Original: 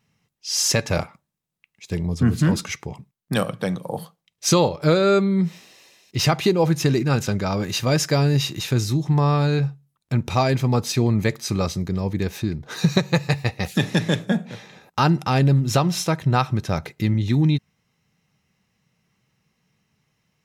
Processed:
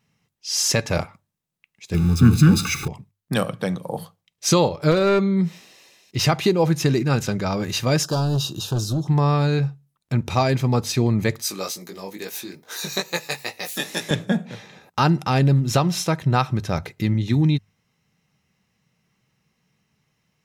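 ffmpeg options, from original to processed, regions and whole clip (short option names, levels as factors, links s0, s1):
-filter_complex "[0:a]asettb=1/sr,asplit=3[s0][s1][s2];[s0]atrim=end=1.944[s3];[s1]atrim=start=1.94:end=2.88,asetpts=PTS-STARTPTS,afade=t=in:d=0.004:c=qsin,afade=t=out:st=0.936:d=0.004:c=qsin,aeval=exprs='val(0)+0.5*0.0355*sgn(val(0))':c=same,asuperstop=centerf=980:order=20:qfactor=5.5,aecho=1:1:0.8:0.88,atrim=end_sample=41454[s4];[s2]atrim=start=2.876[s5];[s3][s4]acrossfade=d=0.004:c1=hsin:c2=qsin[s6];[s6][s5]acrossfade=d=0.004:c1=qsin:c2=hsin,asettb=1/sr,asplit=3[s7][s8][s9];[s7]atrim=end=4.914[s10];[s8]atrim=start=4.91:end=5.37,asetpts=PTS-STARTPTS,afade=t=in:d=0.004:c=qsin,afade=t=out:st=0.456:d=0.004:c=qsin,lowpass=5200,bandreject=f=272.4:t=h:w=4,bandreject=f=544.8:t=h:w=4,bandreject=f=817.2:t=h:w=4,bandreject=f=1089.6:t=h:w=4,bandreject=f=1362:t=h:w=4,bandreject=f=1634.4:t=h:w=4,bandreject=f=1906.8:t=h:w=4,bandreject=f=2179.2:t=h:w=4,bandreject=f=2451.6:t=h:w=4,bandreject=f=2724:t=h:w=4,bandreject=f=2996.4:t=h:w=4,bandreject=f=3268.8:t=h:w=4,bandreject=f=3541.2:t=h:w=4,bandreject=f=3813.6:t=h:w=4,bandreject=f=4086:t=h:w=4,bandreject=f=4358.4:t=h:w=4,bandreject=f=4630.8:t=h:w=4,bandreject=f=4903.2:t=h:w=4,bandreject=f=5175.6:t=h:w=4,bandreject=f=5448:t=h:w=4,bandreject=f=5720.4:t=h:w=4,bandreject=f=5992.8:t=h:w=4,bandreject=f=6265.2:t=h:w=4,bandreject=f=6537.6:t=h:w=4,bandreject=f=6810:t=h:w=4,bandreject=f=7082.4:t=h:w=4,bandreject=f=7354.8:t=h:w=4,bandreject=f=7627.2:t=h:w=4,bandreject=f=7899.6:t=h:w=4,bandreject=f=8172:t=h:w=4,bandreject=f=8444.4:t=h:w=4,bandreject=f=8716.8:t=h:w=4,bandreject=f=8989.2:t=h:w=4,bandreject=f=9261.6:t=h:w=4,bandreject=f=9534:t=h:w=4,bandreject=f=9806.4:t=h:w=4,bandreject=f=10078.8:t=h:w=4,aeval=exprs='clip(val(0),-1,0.168)':c=same[s11];[s9]atrim=start=5.366[s12];[s10][s11]acrossfade=d=0.004:c1=hsin:c2=qsin[s13];[s13][s12]acrossfade=d=0.004:c1=qsin:c2=hsin,asettb=1/sr,asplit=3[s14][s15][s16];[s14]atrim=end=8.034[s17];[s15]atrim=start=8.03:end=9.08,asetpts=PTS-STARTPTS,afade=t=in:d=0.004:c=qsin,afade=t=out:st=1.046:d=0.004:c=qsin,asoftclip=type=hard:threshold=0.126,asuperstop=centerf=2100:order=4:qfactor=1.3[s18];[s16]atrim=start=9.076[s19];[s17][s18]acrossfade=d=0.004:c1=hsin:c2=qsin[s20];[s20][s19]acrossfade=d=0.004:c1=qsin:c2=hsin,asettb=1/sr,asplit=3[s21][s22][s23];[s21]atrim=end=11.424[s24];[s22]atrim=start=11.42:end=14.11,asetpts=PTS-STARTPTS,afade=t=in:d=0.004:c=qsin,afade=t=out:st=2.686:d=0.004:c=qsin,aemphasis=mode=production:type=bsi,flanger=delay=17:depth=4.1:speed=2.3,highpass=250[s25];[s23]atrim=start=14.106[s26];[s24][s25]acrossfade=d=0.004:c1=hsin:c2=qsin[s27];[s27][s26]acrossfade=d=0.004:c1=qsin:c2=hsin,bandreject=f=50:t=h:w=6,bandreject=f=100:t=h:w=6,deesser=0.3"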